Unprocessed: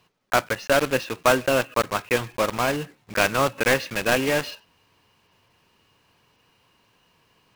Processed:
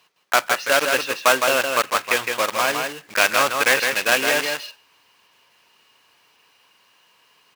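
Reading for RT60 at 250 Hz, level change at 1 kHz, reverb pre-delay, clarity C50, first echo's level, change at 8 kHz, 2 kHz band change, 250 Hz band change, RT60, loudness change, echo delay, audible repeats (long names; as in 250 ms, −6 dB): no reverb audible, +4.0 dB, no reverb audible, no reverb audible, −5.0 dB, +7.0 dB, +5.5 dB, −5.0 dB, no reverb audible, +3.5 dB, 161 ms, 1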